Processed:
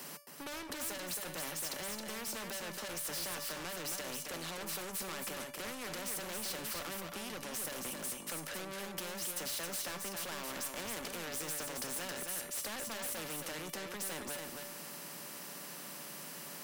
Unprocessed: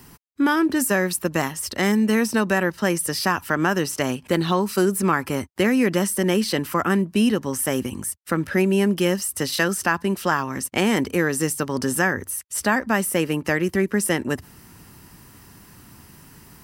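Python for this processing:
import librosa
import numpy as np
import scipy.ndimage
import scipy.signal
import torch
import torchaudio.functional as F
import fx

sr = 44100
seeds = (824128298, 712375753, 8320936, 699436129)

p1 = scipy.signal.sosfilt(scipy.signal.butter(12, 150.0, 'highpass', fs=sr, output='sos'), x)
p2 = fx.peak_eq(p1, sr, hz=570.0, db=13.0, octaves=0.35)
p3 = fx.over_compress(p2, sr, threshold_db=-27.0, ratio=-1.0)
p4 = p2 + (p3 * 10.0 ** (-1.5 / 20.0))
p5 = np.clip(p4, -10.0 ** (-14.5 / 20.0), 10.0 ** (-14.5 / 20.0))
p6 = fx.comb_fb(p5, sr, f0_hz=580.0, decay_s=0.35, harmonics='all', damping=0.0, mix_pct=80)
p7 = 10.0 ** (-32.0 / 20.0) * np.tanh(p6 / 10.0 ** (-32.0 / 20.0))
p8 = p7 + 10.0 ** (-7.5 / 20.0) * np.pad(p7, (int(270 * sr / 1000.0), 0))[:len(p7)]
p9 = fx.spectral_comp(p8, sr, ratio=2.0)
y = p9 * 10.0 ** (5.0 / 20.0)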